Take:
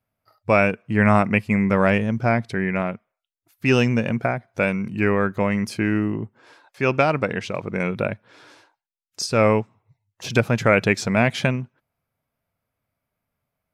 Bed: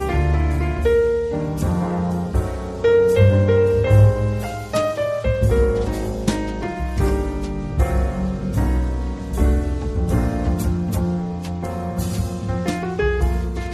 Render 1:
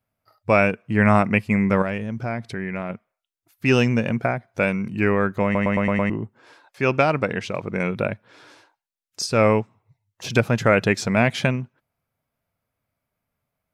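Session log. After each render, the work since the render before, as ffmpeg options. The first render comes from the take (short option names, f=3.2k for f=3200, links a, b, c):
-filter_complex "[0:a]asettb=1/sr,asplit=3[a][b][c];[a]atrim=end=1.824[d];[b]atrim=start=1.82:end=2.9,asetpts=PTS-STARTPTS,afade=t=in:d=0.004:c=qsin,afade=t=out:st=1.076:d=0.004:c=qsin,acompressor=threshold=-28dB:ratio=2:attack=3.2:release=140:knee=1:detection=peak[e];[c]atrim=start=2.896[f];[d][e]acrossfade=d=0.004:c1=hsin:c2=qsin[g];[g][f]acrossfade=d=0.004:c1=qsin:c2=hsin,asettb=1/sr,asplit=3[h][i][j];[h]atrim=end=10.524[k];[i]atrim=start=10.52:end=10.97,asetpts=PTS-STARTPTS,afade=t=in:d=0.004:c=qsin,afade=t=out:st=0.446:d=0.004:c=qsin,bandreject=f=2.3k:w=12[l];[j]atrim=start=10.966[m];[k][l]acrossfade=d=0.004:c1=hsin:c2=qsin[n];[n][m]acrossfade=d=0.004:c1=qsin:c2=hsin,asplit=7[o][p][q][r][s][t][u];[o]atrim=end=5.552[v];[p]atrim=start=5.438:end=5.552[w];[q]atrim=start=5.438:end=5.552[x];[r]atrim=start=5.438:end=5.552[y];[s]atrim=start=5.438:end=5.552[z];[t]atrim=start=5.438:end=5.552[aa];[u]atrim=start=6.098[ab];[v][w]acrossfade=d=0.004:c1=hsin:c2=hsin[ac];[ac][x]acrossfade=d=0.004:c1=hsin:c2=hsin[ad];[ad][y]acrossfade=d=0.004:c1=hsin:c2=hsin[ae];[ae][z]acrossfade=d=0.004:c1=hsin:c2=hsin[af];[af][aa]acrossfade=d=0.004:c1=hsin:c2=hsin[ag];[ag][ab]acrossfade=d=0.004:c1=hsin:c2=hsin"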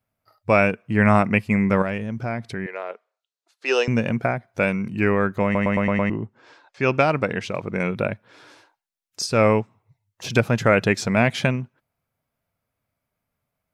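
-filter_complex "[0:a]asettb=1/sr,asplit=3[a][b][c];[a]atrim=end=2.664[d];[b]atrim=start=2.66:end=3.88,asetpts=PTS-STARTPTS,afade=t=in:d=0.004:c=qsin,afade=t=out:st=1.216:d=0.004:c=qsin,highpass=f=440:w=0.5412,highpass=f=440:w=1.3066,equalizer=f=440:t=q:w=4:g=7,equalizer=f=2.2k:t=q:w=4:g=-5,equalizer=f=4.1k:t=q:w=4:g=6,lowpass=f=8.1k:w=0.5412,lowpass=f=8.1k:w=1.3066[e];[c]atrim=start=3.876[f];[d][e]acrossfade=d=0.004:c1=hsin:c2=qsin[g];[g][f]acrossfade=d=0.004:c1=qsin:c2=hsin,asettb=1/sr,asplit=3[h][i][j];[h]atrim=end=5.854[k];[i]atrim=start=5.85:end=6.97,asetpts=PTS-STARTPTS,afade=t=in:d=0.004:c=qsin,afade=t=out:st=1.116:d=0.004:c=qsin,lowpass=f=7.3k:w=0.5412,lowpass=f=7.3k:w=1.3066[l];[j]atrim=start=6.966[m];[k][l]acrossfade=d=0.004:c1=hsin:c2=qsin[n];[n][m]acrossfade=d=0.004:c1=qsin:c2=hsin"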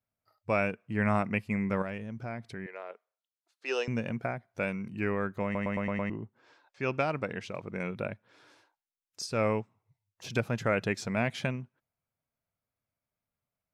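-af "volume=-11dB"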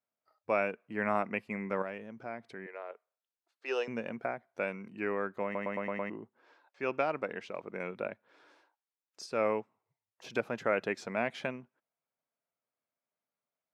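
-af "highpass=310,highshelf=f=3.6k:g=-11.5"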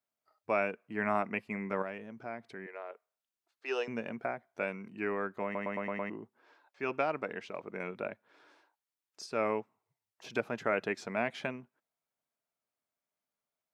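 -af "bandreject=f=520:w=12"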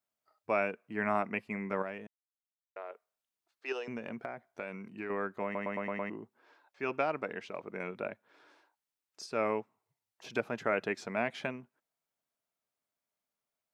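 -filter_complex "[0:a]asettb=1/sr,asplit=3[a][b][c];[a]atrim=end=3.724[d];[b]atrim=start=3.72:end=5.1,asetpts=PTS-STARTPTS,afade=t=in:d=0.004:c=qsin,afade=t=out:st=1.376:d=0.004:c=qsin,acompressor=threshold=-35dB:ratio=4:attack=3.2:release=140:knee=1:detection=peak[e];[c]atrim=start=5.096[f];[d][e]acrossfade=d=0.004:c1=hsin:c2=qsin[g];[g][f]acrossfade=d=0.004:c1=qsin:c2=hsin,asplit=3[h][i][j];[h]atrim=end=2.07,asetpts=PTS-STARTPTS,afade=t=out:st=2.066:d=0.004:c=hsin[k];[i]atrim=start=2.07:end=2.76,asetpts=PTS-STARTPTS,volume=0[l];[j]atrim=start=2.76,asetpts=PTS-STARTPTS,afade=t=in:d=0.004:c=hsin[m];[k][l][m]concat=n=3:v=0:a=1"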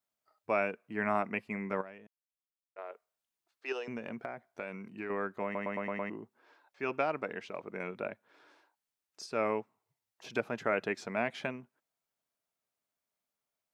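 -filter_complex "[0:a]asplit=3[a][b][c];[a]atrim=end=1.812[d];[b]atrim=start=1.808:end=2.782,asetpts=PTS-STARTPTS,volume=-8.5dB[e];[c]atrim=start=2.778[f];[d][e]acrossfade=d=0.004:c1=hsin:c2=hsin[g];[g][f]acrossfade=d=0.004:c1=hsin:c2=hsin"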